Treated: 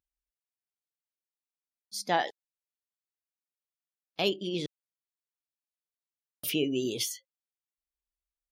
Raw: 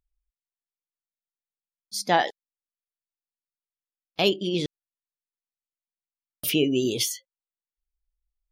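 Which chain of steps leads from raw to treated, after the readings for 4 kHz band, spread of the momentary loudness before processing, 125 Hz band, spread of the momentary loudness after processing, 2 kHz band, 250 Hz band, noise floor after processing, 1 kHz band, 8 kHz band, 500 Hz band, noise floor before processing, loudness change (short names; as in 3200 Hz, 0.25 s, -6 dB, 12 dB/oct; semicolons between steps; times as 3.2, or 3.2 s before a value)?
-6.0 dB, 12 LU, -7.5 dB, 12 LU, -6.0 dB, -6.5 dB, under -85 dBFS, -6.0 dB, -6.0 dB, -6.0 dB, under -85 dBFS, -6.0 dB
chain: HPF 100 Hz 6 dB/oct; gain -6 dB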